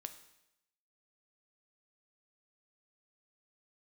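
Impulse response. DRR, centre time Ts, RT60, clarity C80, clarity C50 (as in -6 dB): 8.0 dB, 10 ms, 0.85 s, 14.0 dB, 11.5 dB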